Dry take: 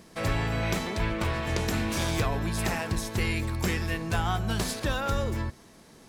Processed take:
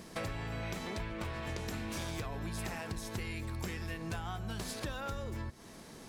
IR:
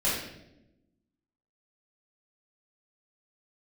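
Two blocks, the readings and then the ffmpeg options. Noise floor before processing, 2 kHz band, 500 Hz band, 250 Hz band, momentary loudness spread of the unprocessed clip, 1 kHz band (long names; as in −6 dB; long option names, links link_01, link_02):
−53 dBFS, −11.0 dB, −10.5 dB, −10.5 dB, 2 LU, −11.0 dB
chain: -af "acompressor=threshold=-38dB:ratio=10,volume=2dB"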